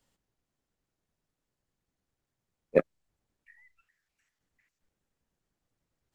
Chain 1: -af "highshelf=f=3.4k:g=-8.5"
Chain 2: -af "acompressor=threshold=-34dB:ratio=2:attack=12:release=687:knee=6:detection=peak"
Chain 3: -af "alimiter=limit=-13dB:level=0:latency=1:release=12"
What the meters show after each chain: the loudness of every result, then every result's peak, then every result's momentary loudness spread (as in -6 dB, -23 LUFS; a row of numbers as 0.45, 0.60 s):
-29.0, -37.5, -32.5 LUFS; -7.5, -16.0, -13.0 dBFS; 0, 0, 0 LU